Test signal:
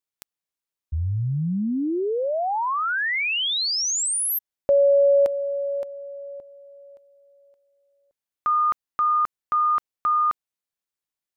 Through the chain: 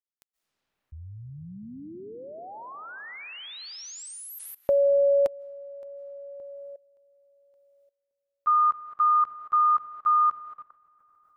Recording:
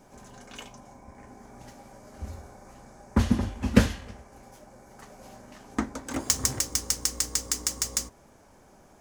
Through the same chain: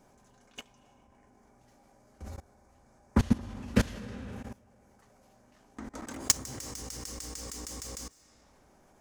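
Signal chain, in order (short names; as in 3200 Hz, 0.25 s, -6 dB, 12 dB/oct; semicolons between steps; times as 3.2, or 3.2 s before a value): digital reverb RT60 2.5 s, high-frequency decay 0.6×, pre-delay 0.12 s, DRR 11 dB; level quantiser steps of 21 dB; gain +1 dB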